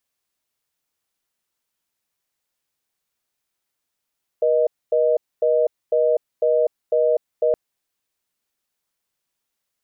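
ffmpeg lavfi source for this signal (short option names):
-f lavfi -i "aevalsrc='0.133*(sin(2*PI*480*t)+sin(2*PI*620*t))*clip(min(mod(t,0.5),0.25-mod(t,0.5))/0.005,0,1)':d=3.12:s=44100"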